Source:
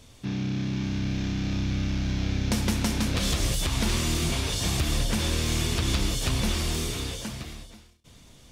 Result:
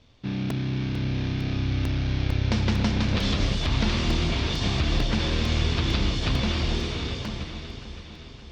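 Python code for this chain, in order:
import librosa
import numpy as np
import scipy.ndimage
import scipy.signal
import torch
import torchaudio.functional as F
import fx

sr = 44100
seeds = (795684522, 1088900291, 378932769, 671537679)

p1 = fx.law_mismatch(x, sr, coded='A')
p2 = scipy.signal.sosfilt(scipy.signal.butter(4, 4800.0, 'lowpass', fs=sr, output='sos'), p1)
p3 = p2 + fx.echo_alternate(p2, sr, ms=284, hz=1000.0, feedback_pct=74, wet_db=-7.5, dry=0)
p4 = fx.buffer_crackle(p3, sr, first_s=0.5, period_s=0.45, block=128, kind='repeat')
y = p4 * librosa.db_to_amplitude(2.0)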